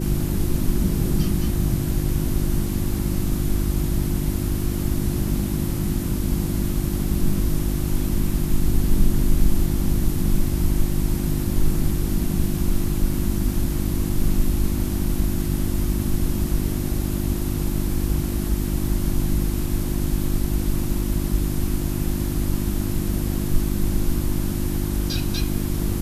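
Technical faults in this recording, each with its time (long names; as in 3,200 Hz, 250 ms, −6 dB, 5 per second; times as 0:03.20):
mains hum 50 Hz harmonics 7 −26 dBFS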